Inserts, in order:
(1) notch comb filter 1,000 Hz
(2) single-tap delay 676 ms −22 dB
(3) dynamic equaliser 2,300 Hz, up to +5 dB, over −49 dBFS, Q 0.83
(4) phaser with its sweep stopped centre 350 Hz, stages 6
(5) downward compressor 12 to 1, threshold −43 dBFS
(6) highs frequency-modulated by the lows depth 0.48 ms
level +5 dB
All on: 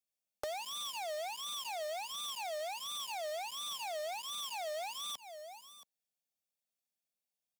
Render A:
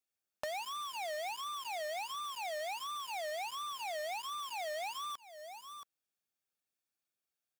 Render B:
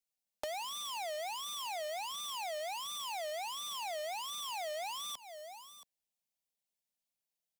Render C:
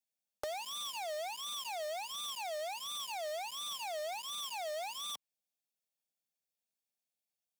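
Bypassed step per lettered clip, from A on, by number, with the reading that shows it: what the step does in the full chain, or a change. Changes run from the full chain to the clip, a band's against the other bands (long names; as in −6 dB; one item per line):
4, 2 kHz band +5.0 dB
1, change in crest factor +2.0 dB
2, change in momentary loudness spread −6 LU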